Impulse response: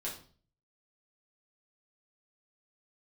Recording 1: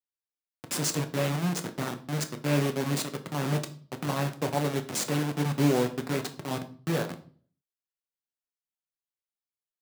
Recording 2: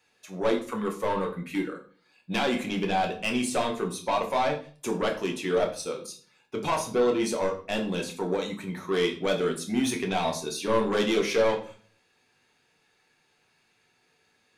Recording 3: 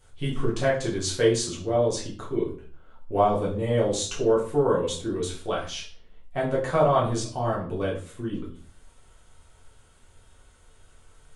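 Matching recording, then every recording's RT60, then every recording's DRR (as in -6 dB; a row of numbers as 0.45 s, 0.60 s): 3; 0.45 s, 0.45 s, 0.45 s; 6.0 dB, 1.0 dB, -6.0 dB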